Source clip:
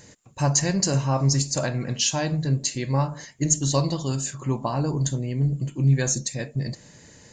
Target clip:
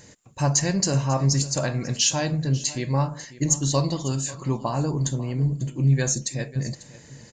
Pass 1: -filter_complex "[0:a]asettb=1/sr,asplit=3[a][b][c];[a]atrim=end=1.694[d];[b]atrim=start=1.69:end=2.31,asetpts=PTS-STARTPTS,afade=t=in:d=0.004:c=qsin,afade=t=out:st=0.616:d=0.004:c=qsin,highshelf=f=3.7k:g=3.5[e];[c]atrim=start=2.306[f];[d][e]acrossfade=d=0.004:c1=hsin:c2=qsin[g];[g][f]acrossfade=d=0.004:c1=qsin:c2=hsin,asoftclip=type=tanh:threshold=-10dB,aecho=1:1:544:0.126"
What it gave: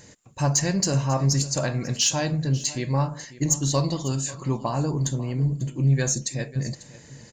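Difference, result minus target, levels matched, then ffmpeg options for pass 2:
soft clip: distortion +13 dB
-filter_complex "[0:a]asettb=1/sr,asplit=3[a][b][c];[a]atrim=end=1.694[d];[b]atrim=start=1.69:end=2.31,asetpts=PTS-STARTPTS,afade=t=in:d=0.004:c=qsin,afade=t=out:st=0.616:d=0.004:c=qsin,highshelf=f=3.7k:g=3.5[e];[c]atrim=start=2.306[f];[d][e]acrossfade=d=0.004:c1=hsin:c2=qsin[g];[g][f]acrossfade=d=0.004:c1=qsin:c2=hsin,asoftclip=type=tanh:threshold=-3dB,aecho=1:1:544:0.126"

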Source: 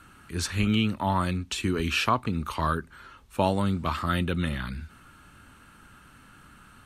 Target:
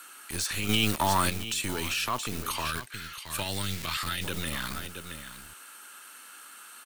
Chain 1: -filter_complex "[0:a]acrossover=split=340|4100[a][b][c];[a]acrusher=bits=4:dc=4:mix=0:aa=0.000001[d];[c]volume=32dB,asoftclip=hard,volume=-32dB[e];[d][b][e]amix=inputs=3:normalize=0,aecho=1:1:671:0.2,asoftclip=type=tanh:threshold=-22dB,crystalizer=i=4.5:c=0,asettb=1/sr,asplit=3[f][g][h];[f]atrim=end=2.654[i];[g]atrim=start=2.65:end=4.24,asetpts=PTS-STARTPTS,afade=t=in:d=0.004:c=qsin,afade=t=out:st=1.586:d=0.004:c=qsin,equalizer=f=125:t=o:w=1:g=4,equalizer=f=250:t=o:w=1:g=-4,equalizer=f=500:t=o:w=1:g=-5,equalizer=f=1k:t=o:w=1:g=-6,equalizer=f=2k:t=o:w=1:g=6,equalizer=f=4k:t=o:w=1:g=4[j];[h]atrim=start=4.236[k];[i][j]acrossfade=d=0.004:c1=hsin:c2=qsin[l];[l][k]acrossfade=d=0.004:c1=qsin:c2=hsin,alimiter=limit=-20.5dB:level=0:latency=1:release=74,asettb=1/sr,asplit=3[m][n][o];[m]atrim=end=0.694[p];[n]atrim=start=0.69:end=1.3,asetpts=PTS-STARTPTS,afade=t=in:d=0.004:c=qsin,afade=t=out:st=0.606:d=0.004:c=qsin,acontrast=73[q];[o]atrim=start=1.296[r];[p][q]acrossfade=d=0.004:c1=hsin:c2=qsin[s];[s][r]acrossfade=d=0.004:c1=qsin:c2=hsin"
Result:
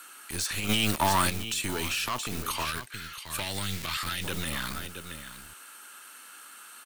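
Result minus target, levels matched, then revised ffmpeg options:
soft clip: distortion +12 dB
-filter_complex "[0:a]acrossover=split=340|4100[a][b][c];[a]acrusher=bits=4:dc=4:mix=0:aa=0.000001[d];[c]volume=32dB,asoftclip=hard,volume=-32dB[e];[d][b][e]amix=inputs=3:normalize=0,aecho=1:1:671:0.2,asoftclip=type=tanh:threshold=-13dB,crystalizer=i=4.5:c=0,asettb=1/sr,asplit=3[f][g][h];[f]atrim=end=2.654[i];[g]atrim=start=2.65:end=4.24,asetpts=PTS-STARTPTS,afade=t=in:d=0.004:c=qsin,afade=t=out:st=1.586:d=0.004:c=qsin,equalizer=f=125:t=o:w=1:g=4,equalizer=f=250:t=o:w=1:g=-4,equalizer=f=500:t=o:w=1:g=-5,equalizer=f=1k:t=o:w=1:g=-6,equalizer=f=2k:t=o:w=1:g=6,equalizer=f=4k:t=o:w=1:g=4[j];[h]atrim=start=4.236[k];[i][j]acrossfade=d=0.004:c1=hsin:c2=qsin[l];[l][k]acrossfade=d=0.004:c1=qsin:c2=hsin,alimiter=limit=-20.5dB:level=0:latency=1:release=74,asettb=1/sr,asplit=3[m][n][o];[m]atrim=end=0.694[p];[n]atrim=start=0.69:end=1.3,asetpts=PTS-STARTPTS,afade=t=in:d=0.004:c=qsin,afade=t=out:st=0.606:d=0.004:c=qsin,acontrast=73[q];[o]atrim=start=1.296[r];[p][q]acrossfade=d=0.004:c1=hsin:c2=qsin[s];[s][r]acrossfade=d=0.004:c1=qsin:c2=hsin"

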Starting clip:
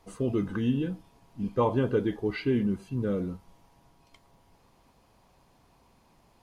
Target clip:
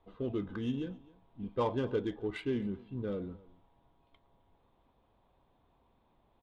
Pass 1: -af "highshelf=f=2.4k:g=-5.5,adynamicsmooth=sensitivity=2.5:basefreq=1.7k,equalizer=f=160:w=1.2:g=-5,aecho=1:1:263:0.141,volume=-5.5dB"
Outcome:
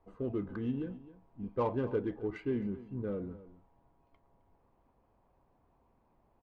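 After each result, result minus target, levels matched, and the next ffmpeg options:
4000 Hz band -11.0 dB; echo-to-direct +6 dB
-af "lowpass=f=3.6k:t=q:w=7,highshelf=f=2.4k:g=-5.5,adynamicsmooth=sensitivity=2.5:basefreq=1.7k,equalizer=f=160:w=1.2:g=-5,aecho=1:1:263:0.141,volume=-5.5dB"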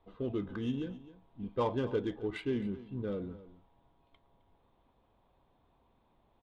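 echo-to-direct +6 dB
-af "lowpass=f=3.6k:t=q:w=7,highshelf=f=2.4k:g=-5.5,adynamicsmooth=sensitivity=2.5:basefreq=1.7k,equalizer=f=160:w=1.2:g=-5,aecho=1:1:263:0.0708,volume=-5.5dB"

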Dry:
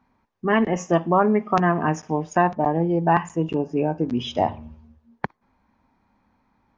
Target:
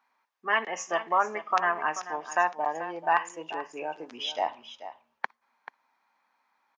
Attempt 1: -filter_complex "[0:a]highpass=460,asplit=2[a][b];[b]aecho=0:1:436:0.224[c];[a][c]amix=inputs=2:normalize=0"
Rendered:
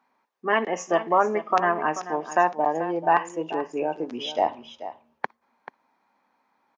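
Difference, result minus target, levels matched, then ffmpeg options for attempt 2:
500 Hz band +4.0 dB
-filter_complex "[0:a]highpass=1k,asplit=2[a][b];[b]aecho=0:1:436:0.224[c];[a][c]amix=inputs=2:normalize=0"

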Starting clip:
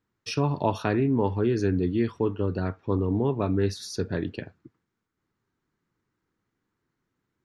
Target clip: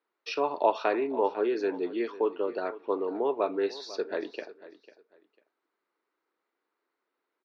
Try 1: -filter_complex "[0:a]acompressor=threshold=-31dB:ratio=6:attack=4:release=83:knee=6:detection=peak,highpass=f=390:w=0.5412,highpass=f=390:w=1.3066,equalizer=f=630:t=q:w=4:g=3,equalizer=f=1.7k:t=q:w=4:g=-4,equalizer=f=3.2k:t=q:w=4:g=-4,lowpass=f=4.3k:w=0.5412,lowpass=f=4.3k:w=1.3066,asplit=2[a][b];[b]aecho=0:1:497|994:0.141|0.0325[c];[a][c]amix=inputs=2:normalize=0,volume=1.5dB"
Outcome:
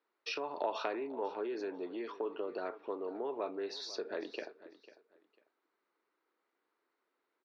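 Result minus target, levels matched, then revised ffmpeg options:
compressor: peak gain reduction +13 dB
-filter_complex "[0:a]highpass=f=390:w=0.5412,highpass=f=390:w=1.3066,equalizer=f=630:t=q:w=4:g=3,equalizer=f=1.7k:t=q:w=4:g=-4,equalizer=f=3.2k:t=q:w=4:g=-4,lowpass=f=4.3k:w=0.5412,lowpass=f=4.3k:w=1.3066,asplit=2[a][b];[b]aecho=0:1:497|994:0.141|0.0325[c];[a][c]amix=inputs=2:normalize=0,volume=1.5dB"

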